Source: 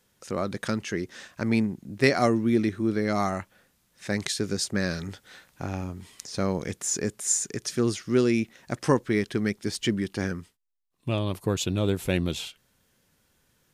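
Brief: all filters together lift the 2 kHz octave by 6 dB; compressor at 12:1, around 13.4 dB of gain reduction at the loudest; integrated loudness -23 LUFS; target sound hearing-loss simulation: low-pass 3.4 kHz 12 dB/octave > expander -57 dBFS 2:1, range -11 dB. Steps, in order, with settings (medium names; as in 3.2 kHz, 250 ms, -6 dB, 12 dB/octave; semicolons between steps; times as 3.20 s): peaking EQ 2 kHz +7.5 dB; compression 12:1, threshold -25 dBFS; low-pass 3.4 kHz 12 dB/octave; expander -57 dBFS 2:1, range -11 dB; trim +10 dB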